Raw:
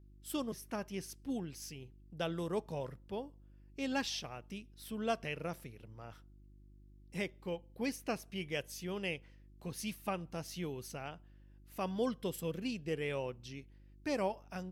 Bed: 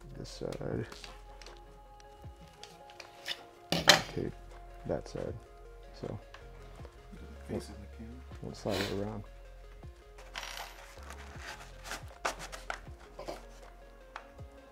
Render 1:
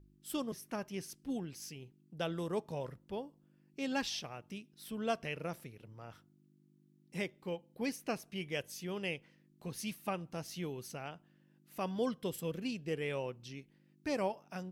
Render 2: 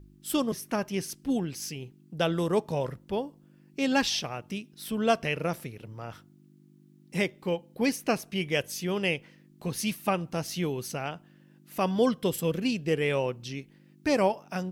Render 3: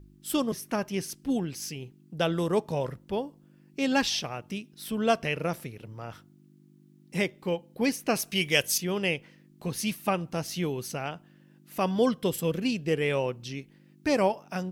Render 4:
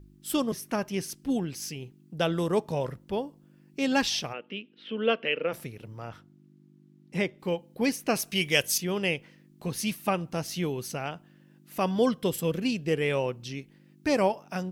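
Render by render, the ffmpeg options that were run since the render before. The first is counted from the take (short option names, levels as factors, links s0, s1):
-af "bandreject=f=50:t=h:w=4,bandreject=f=100:t=h:w=4"
-af "volume=3.35"
-filter_complex "[0:a]asettb=1/sr,asplit=3[s0][s1][s2];[s0]atrim=end=8.154[s3];[s1]atrim=start=8.15:end=8.78,asetpts=PTS-STARTPTS,afade=t=in:d=0.004:c=qsin,afade=t=out:st=0.626:d=0.004:c=qsin,highshelf=f=2200:g=11.5[s4];[s2]atrim=start=8.776[s5];[s3][s4]acrossfade=d=0.004:c1=hsin:c2=qsin[s6];[s6][s5]acrossfade=d=0.004:c1=qsin:c2=hsin"
-filter_complex "[0:a]asplit=3[s0][s1][s2];[s0]afade=t=out:st=4.32:d=0.02[s3];[s1]highpass=f=230:w=0.5412,highpass=f=230:w=1.3066,equalizer=f=330:t=q:w=4:g=-3,equalizer=f=490:t=q:w=4:g=6,equalizer=f=700:t=q:w=4:g=-8,equalizer=f=1000:t=q:w=4:g=-6,equalizer=f=3000:t=q:w=4:g=9,lowpass=f=3100:w=0.5412,lowpass=f=3100:w=1.3066,afade=t=in:st=4.32:d=0.02,afade=t=out:st=5.52:d=0.02[s4];[s2]afade=t=in:st=5.52:d=0.02[s5];[s3][s4][s5]amix=inputs=3:normalize=0,asettb=1/sr,asplit=3[s6][s7][s8];[s6]atrim=end=6.094[s9];[s7]atrim=start=6.09:end=7.4,asetpts=PTS-STARTPTS,afade=t=in:d=0.004:c=qsin,afade=t=out:st=1.306:d=0.004:c=qsin,lowpass=f=3600:p=1[s10];[s8]atrim=start=7.396[s11];[s9][s10]acrossfade=d=0.004:c1=hsin:c2=qsin[s12];[s12][s11]acrossfade=d=0.004:c1=qsin:c2=hsin"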